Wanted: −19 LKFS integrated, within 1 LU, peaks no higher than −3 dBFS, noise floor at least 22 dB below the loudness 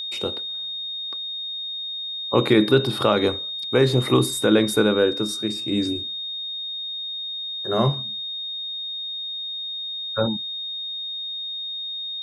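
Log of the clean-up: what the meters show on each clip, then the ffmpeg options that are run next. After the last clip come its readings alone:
interfering tone 3,700 Hz; level of the tone −28 dBFS; integrated loudness −23.5 LKFS; sample peak −4.5 dBFS; target loudness −19.0 LKFS
→ -af "bandreject=frequency=3700:width=30"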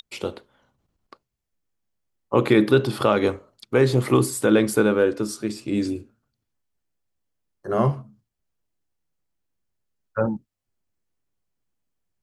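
interfering tone none found; integrated loudness −21.5 LKFS; sample peak −4.5 dBFS; target loudness −19.0 LKFS
→ -af "volume=2.5dB,alimiter=limit=-3dB:level=0:latency=1"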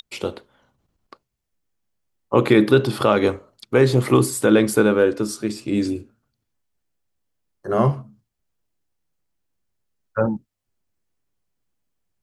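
integrated loudness −19.5 LKFS; sample peak −3.0 dBFS; background noise floor −79 dBFS

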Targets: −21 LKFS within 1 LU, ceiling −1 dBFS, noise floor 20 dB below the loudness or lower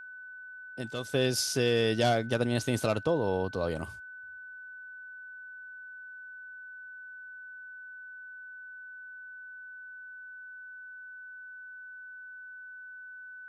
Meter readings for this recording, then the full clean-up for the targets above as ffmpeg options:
interfering tone 1,500 Hz; level of the tone −43 dBFS; integrated loudness −29.5 LKFS; sample peak −14.0 dBFS; target loudness −21.0 LKFS
→ -af "bandreject=frequency=1500:width=30"
-af "volume=8.5dB"

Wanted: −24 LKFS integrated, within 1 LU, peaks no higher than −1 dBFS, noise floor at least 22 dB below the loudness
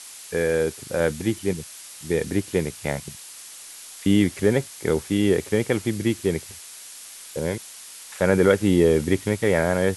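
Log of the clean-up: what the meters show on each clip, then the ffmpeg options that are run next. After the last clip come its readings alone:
background noise floor −42 dBFS; target noise floor −45 dBFS; integrated loudness −23.0 LKFS; sample peak −4.5 dBFS; target loudness −24.0 LKFS
→ -af "afftdn=noise_reduction=6:noise_floor=-42"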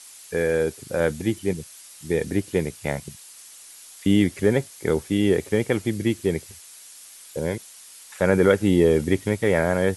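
background noise floor −46 dBFS; integrated loudness −23.0 LKFS; sample peak −4.5 dBFS; target loudness −24.0 LKFS
→ -af "volume=-1dB"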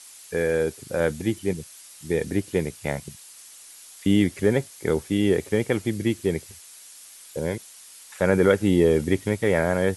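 integrated loudness −24.0 LKFS; sample peak −5.5 dBFS; background noise floor −47 dBFS

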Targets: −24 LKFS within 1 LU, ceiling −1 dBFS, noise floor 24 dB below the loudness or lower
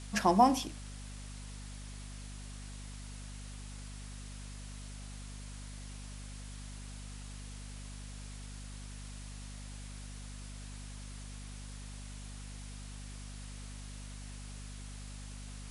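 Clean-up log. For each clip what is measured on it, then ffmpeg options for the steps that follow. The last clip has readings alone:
mains hum 50 Hz; hum harmonics up to 250 Hz; level of the hum −43 dBFS; background noise floor −46 dBFS; target noise floor −65 dBFS; integrated loudness −40.5 LKFS; sample peak −12.5 dBFS; target loudness −24.0 LKFS
→ -af "bandreject=frequency=50:width_type=h:width=6,bandreject=frequency=100:width_type=h:width=6,bandreject=frequency=150:width_type=h:width=6,bandreject=frequency=200:width_type=h:width=6,bandreject=frequency=250:width_type=h:width=6"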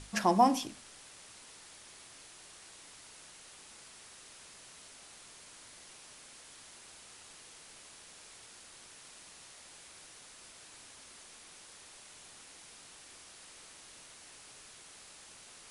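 mains hum none found; background noise floor −55 dBFS; target noise floor −65 dBFS
→ -af "afftdn=noise_reduction=10:noise_floor=-55"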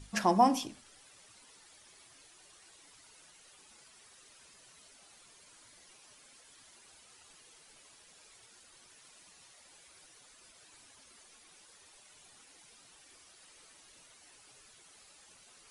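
background noise floor −60 dBFS; integrated loudness −28.5 LKFS; sample peak −12.5 dBFS; target loudness −24.0 LKFS
→ -af "volume=4.5dB"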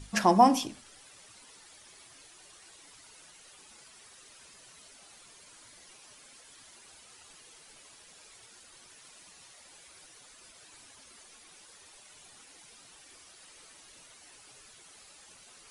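integrated loudness −24.0 LKFS; sample peak −8.0 dBFS; background noise floor −56 dBFS

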